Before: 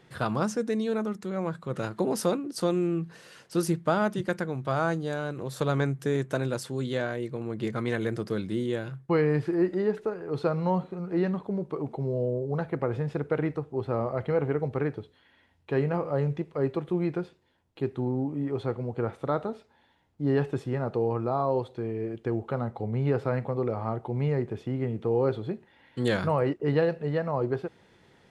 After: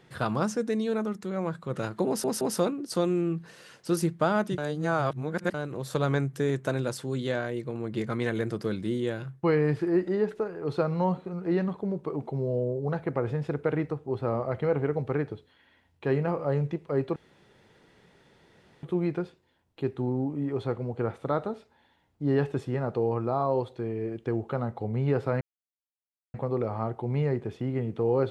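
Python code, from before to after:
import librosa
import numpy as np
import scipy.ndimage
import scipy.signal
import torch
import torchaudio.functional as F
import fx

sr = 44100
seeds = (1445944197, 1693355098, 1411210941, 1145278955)

y = fx.edit(x, sr, fx.stutter(start_s=2.07, slice_s=0.17, count=3),
    fx.reverse_span(start_s=4.24, length_s=0.96),
    fx.insert_room_tone(at_s=16.82, length_s=1.67),
    fx.insert_silence(at_s=23.4, length_s=0.93), tone=tone)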